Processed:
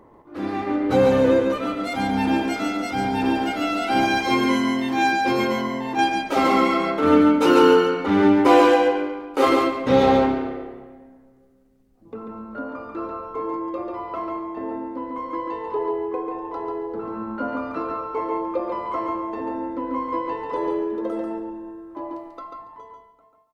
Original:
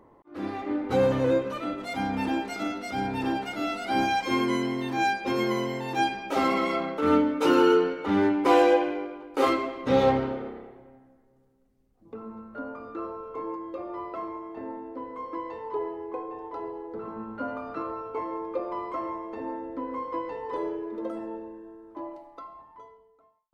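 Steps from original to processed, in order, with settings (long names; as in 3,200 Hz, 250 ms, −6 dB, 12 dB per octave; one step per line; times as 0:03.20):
0:05.47–0:05.99: high-shelf EQ 2,400 Hz −9 dB
repeating echo 141 ms, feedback 16%, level −4 dB
level +5 dB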